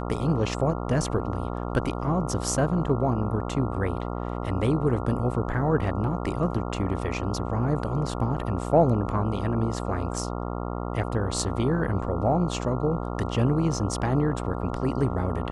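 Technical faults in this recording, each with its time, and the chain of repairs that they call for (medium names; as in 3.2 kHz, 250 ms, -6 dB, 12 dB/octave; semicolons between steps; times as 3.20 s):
buzz 60 Hz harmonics 23 -31 dBFS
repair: de-hum 60 Hz, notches 23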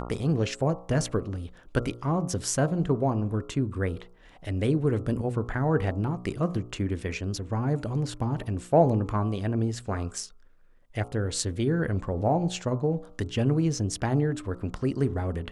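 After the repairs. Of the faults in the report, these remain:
nothing left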